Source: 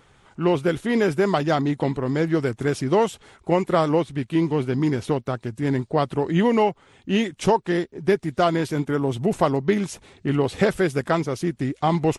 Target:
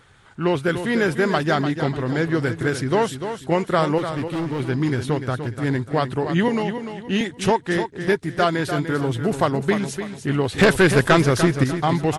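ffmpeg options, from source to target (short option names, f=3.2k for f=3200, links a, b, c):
-filter_complex "[0:a]equalizer=f=100:t=o:w=0.67:g=7,equalizer=f=1.6k:t=o:w=0.67:g=7,equalizer=f=4k:t=o:w=0.67:g=5,equalizer=f=10k:t=o:w=0.67:g=5,asettb=1/sr,asplit=3[a][b][c];[a]atrim=end=3.984[d];[b]atrim=start=3.98:end=4.6,asetpts=PTS-STARTPTS,afade=t=in:d=0.004:c=qsin,afade=t=out:st=0.616:d=0.004:c=qsin,asoftclip=type=hard:threshold=-21.5dB[e];[c]atrim=start=4.596[f];[d][e]acrossfade=d=0.004:c1=hsin:c2=qsin[g];[g][f]acrossfade=d=0.004:c1=qsin:c2=hsin,asettb=1/sr,asplit=3[h][i][j];[h]atrim=end=6.484[k];[i]atrim=start=6.48:end=7.21,asetpts=PTS-STARTPTS,afade=t=in:d=0.004:c=qsin,afade=t=out:st=0.726:d=0.004:c=qsin,acrossover=split=280|3000[l][m][n];[m]acompressor=threshold=-24dB:ratio=6[o];[l][o][n]amix=inputs=3:normalize=0[p];[j]atrim=start=7.206[q];[k][p]acrossfade=d=0.004:c1=hsin:c2=qsin[r];[r][q]acrossfade=d=0.004:c1=qsin:c2=hsin,asettb=1/sr,asplit=3[s][t][u];[s]atrim=end=10.584[v];[t]atrim=start=10.58:end=11.64,asetpts=PTS-STARTPTS,afade=t=in:d=0.004:c=qsin,afade=t=out:st=1.056:d=0.004:c=qsin,aeval=exprs='0.668*(cos(1*acos(clip(val(0)/0.668,-1,1)))-cos(1*PI/2))+0.168*(cos(2*acos(clip(val(0)/0.668,-1,1)))-cos(2*PI/2))+0.188*(cos(5*acos(clip(val(0)/0.668,-1,1)))-cos(5*PI/2))+0.0188*(cos(6*acos(clip(val(0)/0.668,-1,1)))-cos(6*PI/2))':c=same[w];[u]atrim=start=11.636[x];[v][w]acrossfade=d=0.004:c1=hsin:c2=qsin[y];[y][x]acrossfade=d=0.004:c1=qsin:c2=hsin,asplit=2[z][aa];[aa]aecho=0:1:296|592|888|1184:0.355|0.121|0.041|0.0139[ab];[z][ab]amix=inputs=2:normalize=0,volume=-1dB"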